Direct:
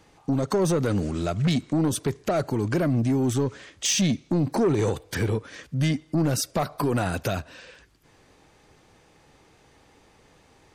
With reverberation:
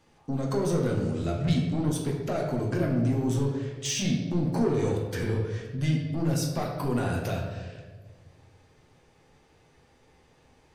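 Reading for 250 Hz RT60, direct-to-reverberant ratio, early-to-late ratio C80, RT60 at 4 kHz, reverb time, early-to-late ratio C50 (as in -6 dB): 1.7 s, -1.5 dB, 5.5 dB, 0.85 s, 1.5 s, 3.5 dB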